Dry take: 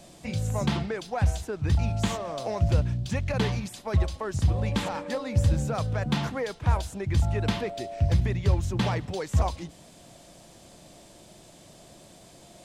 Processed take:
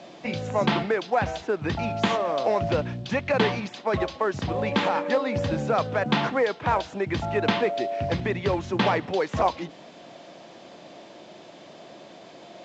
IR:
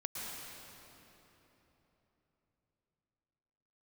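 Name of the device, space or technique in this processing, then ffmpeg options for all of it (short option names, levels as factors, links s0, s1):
telephone: -af "highpass=270,lowpass=3300,volume=2.66" -ar 16000 -c:a pcm_alaw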